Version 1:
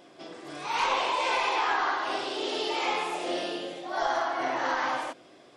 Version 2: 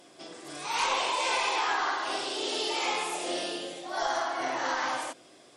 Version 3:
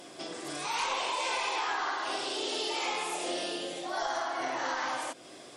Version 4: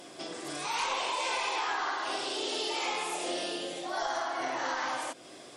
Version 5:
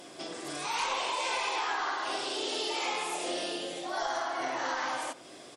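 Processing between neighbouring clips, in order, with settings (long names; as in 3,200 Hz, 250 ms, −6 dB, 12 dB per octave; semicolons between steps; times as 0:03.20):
parametric band 9,400 Hz +13 dB 1.6 octaves; level −2.5 dB
downward compressor 2 to 1, threshold −44 dBFS, peak gain reduction 11 dB; level +6.5 dB
no processing that can be heard
far-end echo of a speakerphone 90 ms, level −18 dB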